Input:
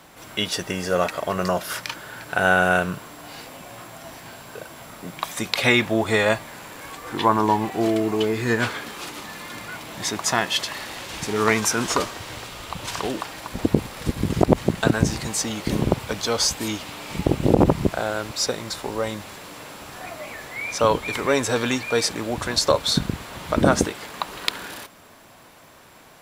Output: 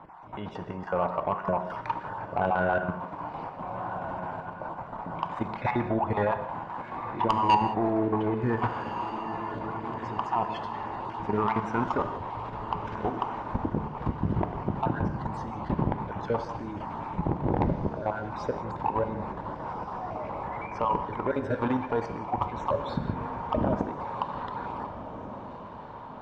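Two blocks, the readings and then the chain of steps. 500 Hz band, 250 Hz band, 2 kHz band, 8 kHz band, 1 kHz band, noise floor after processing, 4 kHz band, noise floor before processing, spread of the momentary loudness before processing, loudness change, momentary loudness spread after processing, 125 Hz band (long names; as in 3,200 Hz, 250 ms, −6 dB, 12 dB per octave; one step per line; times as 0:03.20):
−7.0 dB, −6.5 dB, −13.0 dB, below −30 dB, −1.0 dB, −42 dBFS, −21.0 dB, −49 dBFS, 19 LU, −7.5 dB, 10 LU, −5.0 dB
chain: time-frequency cells dropped at random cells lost 22%
in parallel at +2 dB: downward compressor 8 to 1, threshold −29 dBFS, peak gain reduction 18.5 dB
on the sum: low-pass with resonance 920 Hz, resonance Q 4.9
parametric band 600 Hz −7 dB 2.4 octaves
output level in coarse steps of 12 dB
soft clipping −14 dBFS, distortion −15 dB
hum removal 72.34 Hz, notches 30
on a send: feedback delay with all-pass diffusion 1,514 ms, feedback 52%, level −12 dB
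on the sum: reverb whose tail is shaped and stops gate 210 ms flat, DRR 9.5 dB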